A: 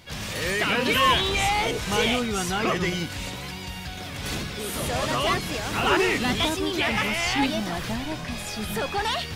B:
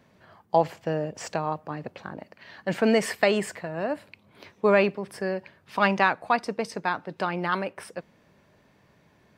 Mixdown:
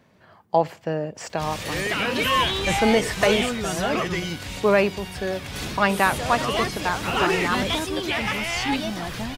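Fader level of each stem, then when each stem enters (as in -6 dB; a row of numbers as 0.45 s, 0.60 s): -1.0 dB, +1.5 dB; 1.30 s, 0.00 s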